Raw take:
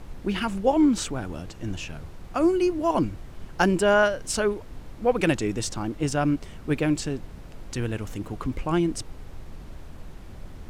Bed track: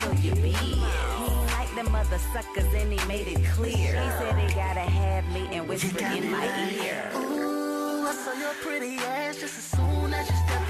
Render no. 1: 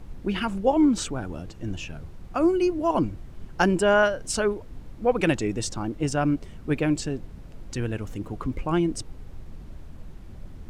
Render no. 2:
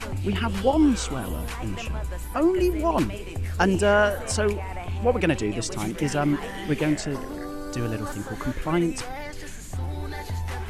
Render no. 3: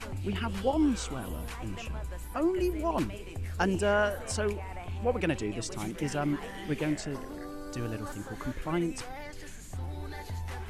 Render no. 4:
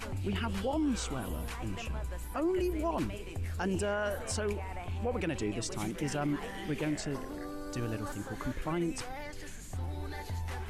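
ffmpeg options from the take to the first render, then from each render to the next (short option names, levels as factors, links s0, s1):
-af "afftdn=nr=6:nf=-42"
-filter_complex "[1:a]volume=0.473[s0];[0:a][s0]amix=inputs=2:normalize=0"
-af "volume=0.447"
-af "alimiter=limit=0.0631:level=0:latency=1:release=32,acompressor=mode=upward:threshold=0.00316:ratio=2.5"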